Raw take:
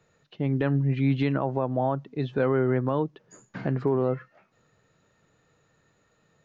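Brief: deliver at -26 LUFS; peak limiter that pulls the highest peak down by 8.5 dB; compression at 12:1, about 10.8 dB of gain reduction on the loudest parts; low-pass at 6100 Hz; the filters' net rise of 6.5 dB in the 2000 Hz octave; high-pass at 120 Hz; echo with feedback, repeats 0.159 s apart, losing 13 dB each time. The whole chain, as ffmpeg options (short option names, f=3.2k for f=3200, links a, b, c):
-af "highpass=120,lowpass=6.1k,equalizer=f=2k:t=o:g=8.5,acompressor=threshold=-30dB:ratio=12,alimiter=level_in=3.5dB:limit=-24dB:level=0:latency=1,volume=-3.5dB,aecho=1:1:159|318|477:0.224|0.0493|0.0108,volume=12dB"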